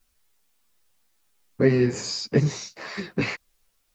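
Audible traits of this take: tremolo triangle 1.5 Hz, depth 35%; a quantiser's noise floor 12-bit, dither triangular; a shimmering, thickened sound

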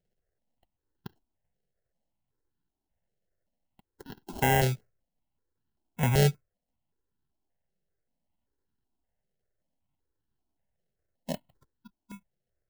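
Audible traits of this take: aliases and images of a low sample rate 1200 Hz, jitter 0%; notches that jump at a steady rate 5.2 Hz 280–2200 Hz

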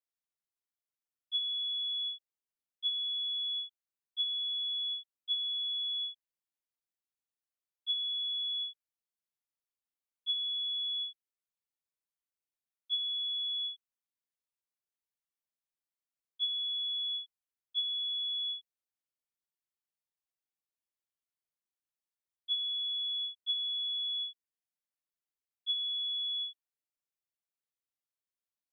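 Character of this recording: noise floor -95 dBFS; spectral tilt +2.0 dB/oct

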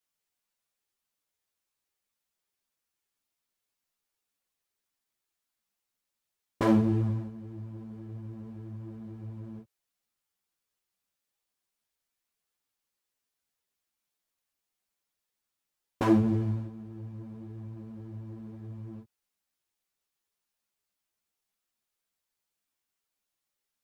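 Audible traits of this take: a shimmering, thickened sound

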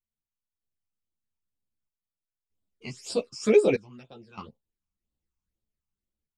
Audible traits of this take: phasing stages 8, 2 Hz, lowest notch 500–2000 Hz; random-step tremolo 1.6 Hz, depth 90%; a shimmering, thickened sound

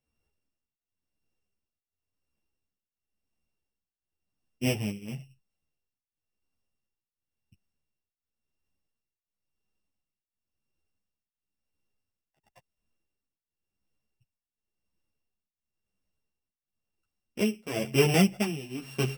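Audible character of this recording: a buzz of ramps at a fixed pitch in blocks of 16 samples; tremolo triangle 0.95 Hz, depth 95%; a shimmering, thickened sound

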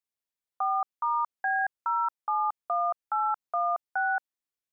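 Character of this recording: noise floor -93 dBFS; spectral tilt -1.0 dB/oct

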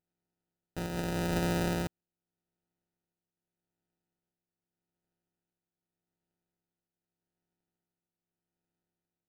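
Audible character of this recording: a buzz of ramps at a fixed pitch in blocks of 256 samples; tremolo triangle 0.83 Hz, depth 55%; aliases and images of a low sample rate 1100 Hz, jitter 0%

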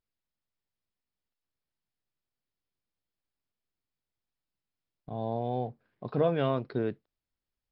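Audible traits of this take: MP3

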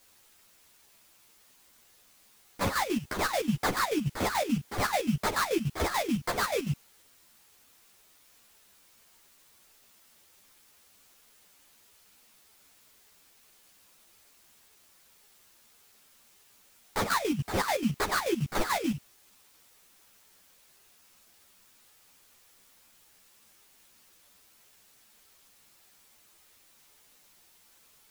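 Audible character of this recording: aliases and images of a low sample rate 2900 Hz, jitter 20%; chopped level 6.9 Hz, depth 65%, duty 50%; a quantiser's noise floor 10-bit, dither triangular; a shimmering, thickened sound

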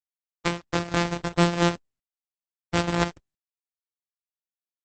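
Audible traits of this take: a buzz of ramps at a fixed pitch in blocks of 256 samples; tremolo saw up 0.57 Hz, depth 45%; a quantiser's noise floor 8-bit, dither none; Opus

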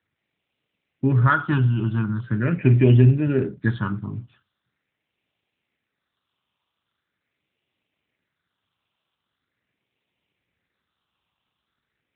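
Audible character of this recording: a quantiser's noise floor 12-bit, dither triangular; phasing stages 6, 0.42 Hz, lowest notch 500–1300 Hz; AMR-NB

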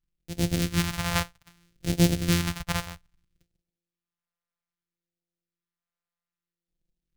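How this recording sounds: a buzz of ramps at a fixed pitch in blocks of 256 samples; phasing stages 2, 0.62 Hz, lowest notch 310–1100 Hz

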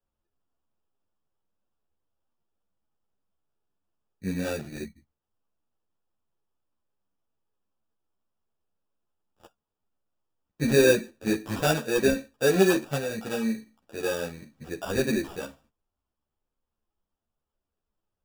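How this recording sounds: aliases and images of a low sample rate 2100 Hz, jitter 0%; a shimmering, thickened sound

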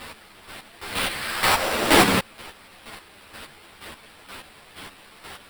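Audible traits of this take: a quantiser's noise floor 8-bit, dither triangular; chopped level 2.1 Hz, depth 65%, duty 25%; aliases and images of a low sample rate 6500 Hz, jitter 0%; a shimmering, thickened sound

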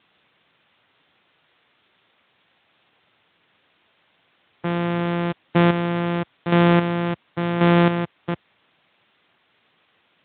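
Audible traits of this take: a buzz of ramps at a fixed pitch in blocks of 256 samples; chopped level 0.92 Hz, depth 60%, duty 25%; a quantiser's noise floor 10-bit, dither triangular; Speex

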